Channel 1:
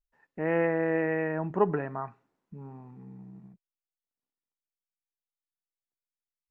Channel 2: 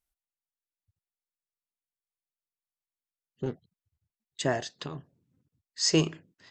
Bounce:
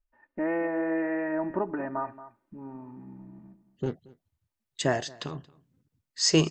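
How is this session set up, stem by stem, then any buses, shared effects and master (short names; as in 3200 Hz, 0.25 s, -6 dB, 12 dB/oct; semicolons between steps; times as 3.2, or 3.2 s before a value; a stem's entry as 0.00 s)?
+2.5 dB, 0.00 s, no send, echo send -15 dB, compressor 6:1, threshold -28 dBFS, peak gain reduction 10.5 dB; LPF 2000 Hz 12 dB/oct; comb 3.3 ms, depth 83%
+2.0 dB, 0.40 s, no send, echo send -23.5 dB, dry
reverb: off
echo: echo 0.227 s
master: dry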